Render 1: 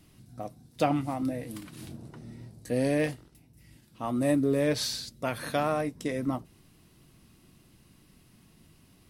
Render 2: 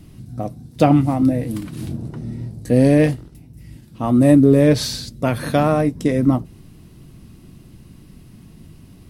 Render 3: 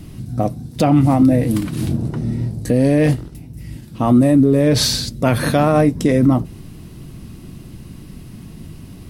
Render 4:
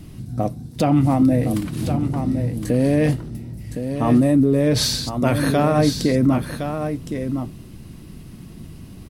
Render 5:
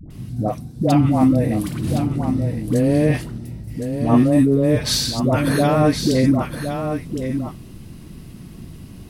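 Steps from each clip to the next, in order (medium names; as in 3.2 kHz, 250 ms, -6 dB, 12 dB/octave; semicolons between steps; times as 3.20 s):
bass shelf 420 Hz +11.5 dB; trim +6.5 dB
peak limiter -12.5 dBFS, peak gain reduction 11 dB; trim +7.5 dB
delay 1064 ms -8 dB; trim -3.5 dB
phase dispersion highs, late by 105 ms, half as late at 680 Hz; trim +1 dB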